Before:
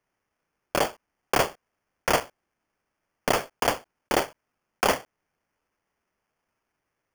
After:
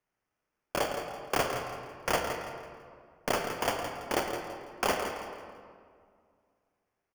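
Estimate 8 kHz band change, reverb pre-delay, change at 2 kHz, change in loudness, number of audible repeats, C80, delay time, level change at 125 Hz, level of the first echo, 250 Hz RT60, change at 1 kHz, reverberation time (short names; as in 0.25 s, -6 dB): -5.5 dB, 22 ms, -4.5 dB, -6.0 dB, 2, 4.5 dB, 0.166 s, -4.0 dB, -9.0 dB, 2.4 s, -4.5 dB, 2.1 s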